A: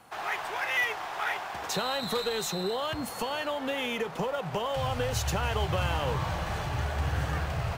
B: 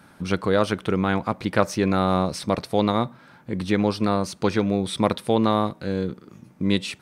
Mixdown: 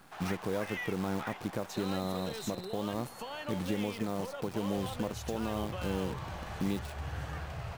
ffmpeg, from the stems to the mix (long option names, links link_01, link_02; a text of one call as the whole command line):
ffmpeg -i stem1.wav -i stem2.wav -filter_complex "[0:a]volume=-9dB[link_01];[1:a]highpass=frequency=66:poles=1,acrossover=split=890|7500[link_02][link_03][link_04];[link_02]acompressor=threshold=-23dB:ratio=4[link_05];[link_03]acompressor=threshold=-45dB:ratio=4[link_06];[link_04]acompressor=threshold=-54dB:ratio=4[link_07];[link_05][link_06][link_07]amix=inputs=3:normalize=0,acrusher=bits=7:dc=4:mix=0:aa=0.000001,volume=-4dB[link_08];[link_01][link_08]amix=inputs=2:normalize=0,alimiter=limit=-21.5dB:level=0:latency=1:release=387" out.wav